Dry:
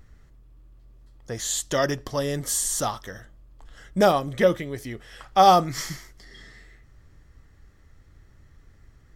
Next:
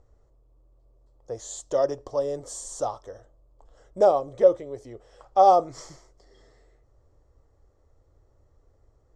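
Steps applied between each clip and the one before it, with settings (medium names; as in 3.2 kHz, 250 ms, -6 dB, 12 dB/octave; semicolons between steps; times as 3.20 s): FFT filter 110 Hz 0 dB, 180 Hz -9 dB, 520 Hz +12 dB, 1.1 kHz +3 dB, 1.7 kHz -11 dB, 3 kHz -10 dB, 5.1 kHz -4 dB, 7.6 kHz -1 dB, 13 kHz -26 dB; trim -8.5 dB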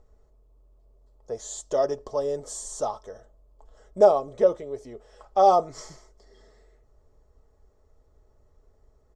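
comb 4.7 ms, depth 48%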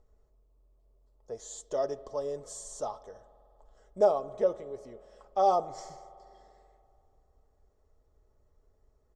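spring tank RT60 2.7 s, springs 48 ms, chirp 40 ms, DRR 17.5 dB; trim -7 dB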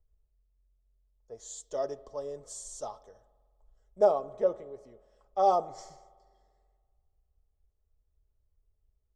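three bands expanded up and down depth 40%; trim -3 dB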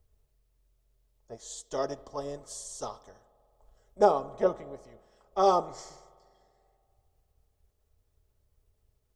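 spectral peaks clipped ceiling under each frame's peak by 13 dB; trim +1.5 dB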